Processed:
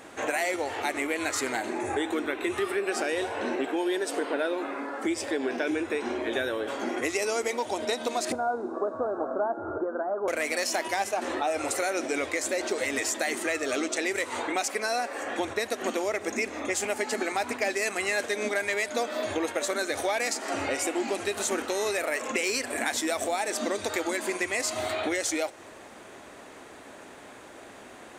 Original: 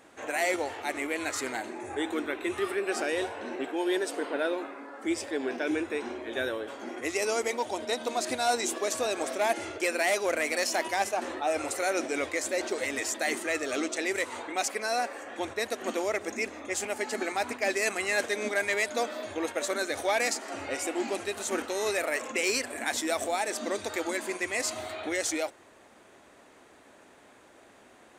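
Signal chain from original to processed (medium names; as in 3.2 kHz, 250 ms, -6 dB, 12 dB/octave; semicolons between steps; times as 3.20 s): compression 5:1, threshold -35 dBFS, peak gain reduction 12 dB; 8.32–10.28 s: steep low-pass 1.5 kHz 96 dB/octave; two-slope reverb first 0.38 s, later 3.2 s, from -16 dB, DRR 19.5 dB; trim +9 dB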